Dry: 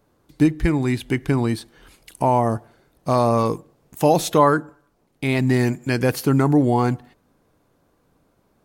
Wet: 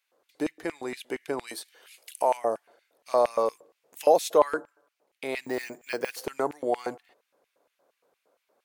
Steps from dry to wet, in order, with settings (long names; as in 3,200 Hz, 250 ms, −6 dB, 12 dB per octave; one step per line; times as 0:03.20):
dynamic equaliser 2,700 Hz, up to −6 dB, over −42 dBFS, Q 1.2
0:05.45–0:06.26: bad sample-rate conversion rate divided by 2×, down filtered, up hold
auto-filter high-pass square 4.3 Hz 520–2,400 Hz
0:01.47–0:02.37: spectral tilt +2.5 dB per octave
level −7 dB